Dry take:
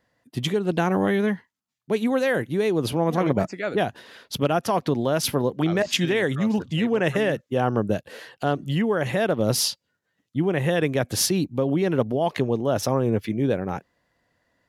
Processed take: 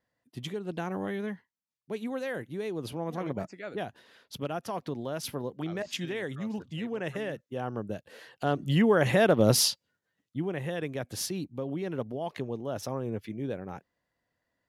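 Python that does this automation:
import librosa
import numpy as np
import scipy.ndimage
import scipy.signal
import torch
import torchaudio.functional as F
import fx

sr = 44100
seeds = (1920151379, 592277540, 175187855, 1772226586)

y = fx.gain(x, sr, db=fx.line((7.97, -12.0), (8.84, 0.5), (9.47, 0.5), (10.67, -11.5)))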